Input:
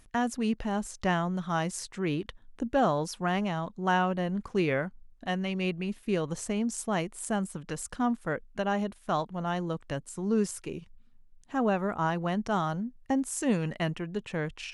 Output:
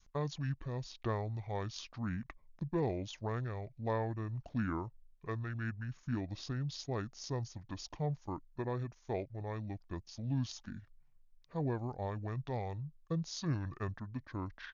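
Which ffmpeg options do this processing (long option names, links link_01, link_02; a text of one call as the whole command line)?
ffmpeg -i in.wav -af "adynamicequalizer=threshold=0.00891:dfrequency=700:dqfactor=0.75:tfrequency=700:tqfactor=0.75:attack=5:release=100:ratio=0.375:range=3.5:mode=cutabove:tftype=bell,asetrate=26990,aresample=44100,atempo=1.63392,volume=-7.5dB" out.wav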